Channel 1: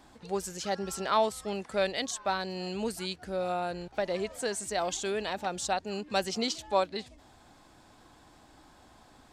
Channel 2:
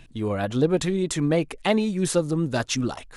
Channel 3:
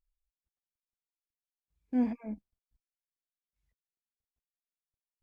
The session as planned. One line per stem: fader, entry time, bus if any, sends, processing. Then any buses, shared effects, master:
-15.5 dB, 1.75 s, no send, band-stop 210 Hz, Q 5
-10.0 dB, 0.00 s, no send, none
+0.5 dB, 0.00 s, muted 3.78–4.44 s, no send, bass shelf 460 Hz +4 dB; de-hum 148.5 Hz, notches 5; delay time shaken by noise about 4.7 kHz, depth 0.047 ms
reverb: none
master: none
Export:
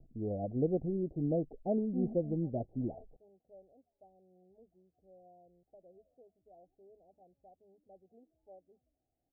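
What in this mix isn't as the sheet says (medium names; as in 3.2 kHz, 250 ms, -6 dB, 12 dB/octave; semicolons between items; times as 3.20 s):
stem 1 -15.5 dB -> -27.0 dB; stem 3 +0.5 dB -> -11.5 dB; master: extra steep low-pass 760 Hz 96 dB/octave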